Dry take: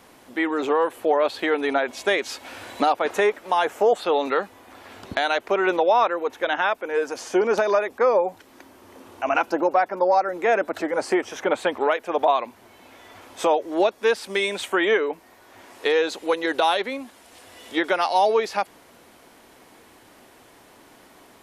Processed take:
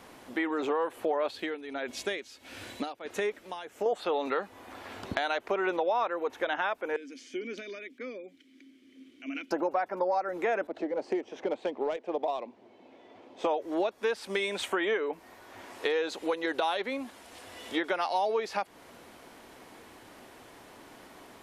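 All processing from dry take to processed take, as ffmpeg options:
-filter_complex "[0:a]asettb=1/sr,asplit=3[s0][s1][s2];[s0]atrim=end=1.314[s3];[s1]atrim=start=1.31:end=3.86,asetpts=PTS-STARTPTS,afade=t=in:d=0.004:c=qsin,afade=t=out:st=2.546:d=0.004:c=qsin,equalizer=f=910:w=0.7:g=-10,tremolo=f=1.5:d=0.82[s4];[s2]atrim=start=3.856[s5];[s3][s4]acrossfade=d=0.004:c1=hsin:c2=qsin[s6];[s6][s5]acrossfade=d=0.004:c1=qsin:c2=hsin,asettb=1/sr,asplit=3[s7][s8][s9];[s7]atrim=end=6.964[s10];[s8]atrim=start=6.96:end=9.51,asetpts=PTS-STARTPTS,afade=t=in:d=0.004:c=qsin,afade=t=out:st=2.546:d=0.004:c=qsin,asplit=3[s11][s12][s13];[s11]bandpass=f=270:t=q:w=8,volume=1[s14];[s12]bandpass=f=2290:t=q:w=8,volume=0.501[s15];[s13]bandpass=f=3010:t=q:w=8,volume=0.355[s16];[s14][s15][s16]amix=inputs=3:normalize=0,bass=f=250:g=-1,treble=f=4000:g=14[s17];[s9]atrim=start=9.506[s18];[s10][s17]acrossfade=d=0.004:c1=hsin:c2=qsin[s19];[s19][s18]acrossfade=d=0.004:c1=qsin:c2=hsin,asettb=1/sr,asplit=3[s20][s21][s22];[s20]atrim=end=10.674[s23];[s21]atrim=start=10.67:end=13.45,asetpts=PTS-STARTPTS,afade=t=in:d=0.004:c=qsin,afade=t=out:st=2.776:d=0.004:c=qsin,highpass=240,adynamicsmooth=sensitivity=1:basefreq=2500,equalizer=f=1400:w=0.94:g=-14.5[s24];[s22]atrim=start=13.446[s25];[s23][s24]acrossfade=d=0.004:c1=hsin:c2=qsin[s26];[s26][s25]acrossfade=d=0.004:c1=qsin:c2=hsin,highshelf=f=6900:g=-5,acompressor=threshold=0.0316:ratio=2.5"

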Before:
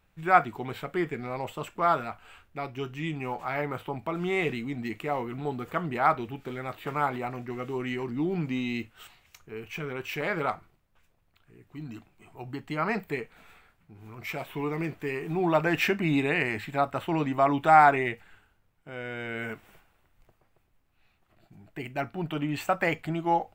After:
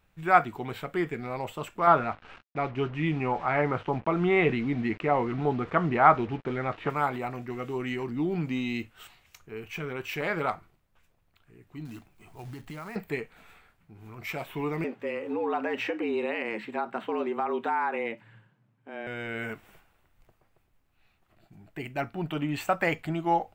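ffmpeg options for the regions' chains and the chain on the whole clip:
-filter_complex "[0:a]asettb=1/sr,asplit=3[s0][s1][s2];[s0]atrim=end=1.874[s3];[s1]atrim=start=1.87:end=6.9,asetpts=PTS-STARTPTS,afade=t=in:d=0.004:c=qsin,afade=t=out:st=5.026:d=0.004:c=qsin,acontrast=31,acrusher=bits=6:mix=0:aa=0.5,lowpass=2500[s4];[s2]atrim=start=6.896[s5];[s3][s4]acrossfade=d=0.004:c1=hsin:c2=qsin[s6];[s6][s5]acrossfade=d=0.004:c1=qsin:c2=hsin,asettb=1/sr,asplit=3[s7][s8][s9];[s7]atrim=end=11.854[s10];[s8]atrim=start=11.85:end=12.96,asetpts=PTS-STARTPTS,afade=t=in:d=0.004:c=qsin,afade=t=out:st=1.106:d=0.004:c=qsin,asubboost=boost=4.5:cutoff=190,acompressor=threshold=0.0141:ratio=6:attack=3.2:release=140:knee=1:detection=peak,acrusher=bits=4:mode=log:mix=0:aa=0.000001[s11];[s9]atrim=start=12.956[s12];[s10][s11]acrossfade=d=0.004:c1=hsin:c2=qsin[s13];[s13][s12]acrossfade=d=0.004:c1=qsin:c2=hsin,asettb=1/sr,asplit=3[s14][s15][s16];[s14]atrim=end=14.844[s17];[s15]atrim=start=14.84:end=19.07,asetpts=PTS-STARTPTS,afade=t=in:d=0.004:c=qsin,afade=t=out:st=4.226:d=0.004:c=qsin,acompressor=threshold=0.0562:ratio=4:attack=3.2:release=140:knee=1:detection=peak,aemphasis=mode=reproduction:type=75kf,afreqshift=110[s18];[s16]atrim=start=19.066[s19];[s17][s18]acrossfade=d=0.004:c1=hsin:c2=qsin[s20];[s20][s19]acrossfade=d=0.004:c1=qsin:c2=hsin"

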